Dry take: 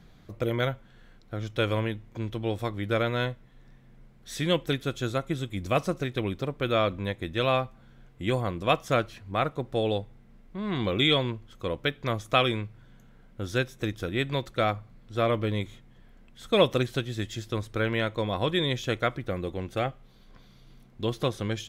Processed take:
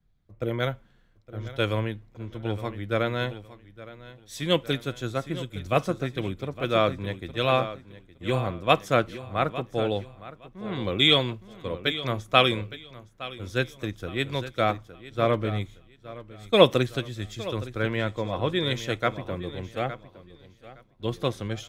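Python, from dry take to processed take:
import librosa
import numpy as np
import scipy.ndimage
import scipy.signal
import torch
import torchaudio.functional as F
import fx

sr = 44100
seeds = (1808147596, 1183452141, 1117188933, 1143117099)

p1 = fx.high_shelf(x, sr, hz=5100.0, db=-9.5, at=(17.96, 18.66))
p2 = p1 + fx.echo_feedback(p1, sr, ms=865, feedback_pct=38, wet_db=-10.5, dry=0)
y = fx.band_widen(p2, sr, depth_pct=70)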